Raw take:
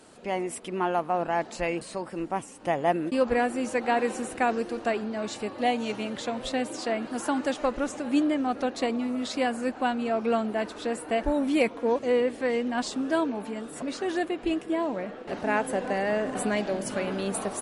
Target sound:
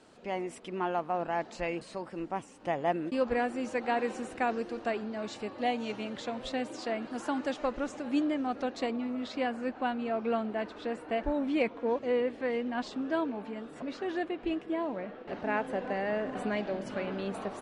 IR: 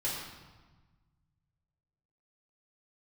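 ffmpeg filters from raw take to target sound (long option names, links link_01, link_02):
-af "asetnsamples=nb_out_samples=441:pad=0,asendcmd='8.9 lowpass f 3800',lowpass=6100,volume=-5dB"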